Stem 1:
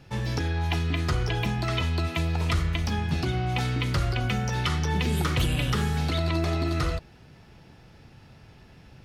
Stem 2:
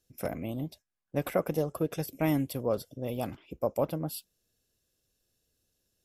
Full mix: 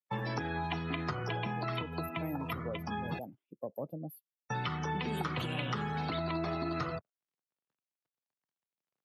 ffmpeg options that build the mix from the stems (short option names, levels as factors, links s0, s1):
-filter_complex "[0:a]equalizer=f=1000:t=o:w=1.5:g=7.5,aeval=exprs='sgn(val(0))*max(abs(val(0))-0.0075,0)':c=same,volume=1.26,asplit=3[s0][s1][s2];[s0]atrim=end=3.19,asetpts=PTS-STARTPTS,afade=t=out:st=3.186:d=0.004:c=hsin[s3];[s1]atrim=start=3.19:end=4.5,asetpts=PTS-STARTPTS,volume=0[s4];[s2]atrim=start=4.5,asetpts=PTS-STARTPTS,afade=t=in:d=0.004:c=hsin[s5];[s3][s4][s5]concat=n=3:v=0:a=1[s6];[1:a]acontrast=46,aexciter=amount=2.8:drive=9.3:freq=12000,volume=0.237,afade=t=in:st=1.55:d=0.31:silence=0.334965,asplit=2[s7][s8];[s8]apad=whole_len=398762[s9];[s6][s9]sidechaincompress=threshold=0.0126:ratio=5:attack=25:release=1450[s10];[s10][s7]amix=inputs=2:normalize=0,highpass=f=120:w=0.5412,highpass=f=120:w=1.3066,afftdn=nr=27:nf=-37,acrossover=split=290|3800[s11][s12][s13];[s11]acompressor=threshold=0.0126:ratio=4[s14];[s12]acompressor=threshold=0.0141:ratio=4[s15];[s13]acompressor=threshold=0.002:ratio=4[s16];[s14][s15][s16]amix=inputs=3:normalize=0"